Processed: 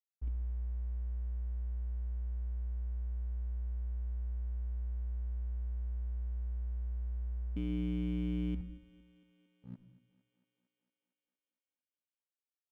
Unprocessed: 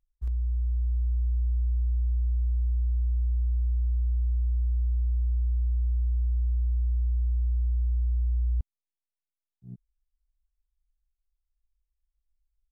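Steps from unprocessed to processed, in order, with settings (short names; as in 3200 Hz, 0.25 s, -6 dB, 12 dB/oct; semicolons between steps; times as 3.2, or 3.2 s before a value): 7.56–8.55 infinite clipping; in parallel at 0 dB: limiter -32.5 dBFS, peak gain reduction 11 dB; on the sum: vocal rider within 3 dB; vocal tract filter i; crossover distortion -59.5 dBFS; thinning echo 0.228 s, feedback 77%, high-pass 210 Hz, level -18 dB; on a send at -15 dB: reverb RT60 0.50 s, pre-delay 70 ms; on the sum: gain +1 dB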